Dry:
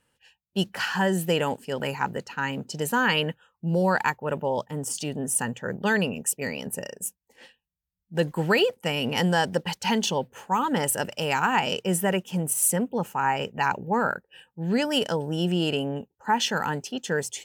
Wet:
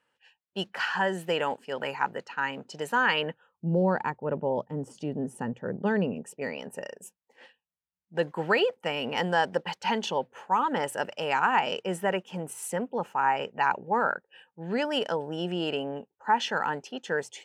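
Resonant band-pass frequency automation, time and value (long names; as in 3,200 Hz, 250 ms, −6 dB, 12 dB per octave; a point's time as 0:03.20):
resonant band-pass, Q 0.52
0:03.14 1,200 Hz
0:03.68 310 Hz
0:06.10 310 Hz
0:06.61 980 Hz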